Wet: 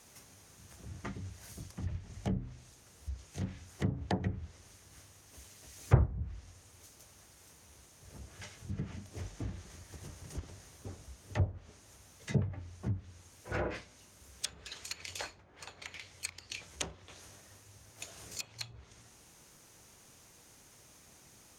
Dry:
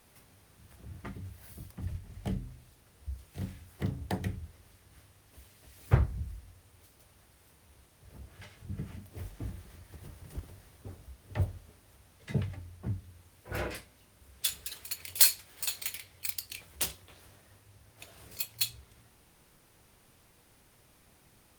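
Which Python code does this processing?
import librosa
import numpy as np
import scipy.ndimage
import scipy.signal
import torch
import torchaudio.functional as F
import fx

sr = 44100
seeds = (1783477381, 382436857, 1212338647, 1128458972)

y = fx.highpass(x, sr, hz=48.0, slope=6)
y = fx.low_shelf(y, sr, hz=130.0, db=-2.0)
y = fx.env_lowpass_down(y, sr, base_hz=1000.0, full_db=-30.5)
y = fx.peak_eq(y, sr, hz=6500.0, db=12.0, octaves=0.56)
y = y * 10.0 ** (2.0 / 20.0)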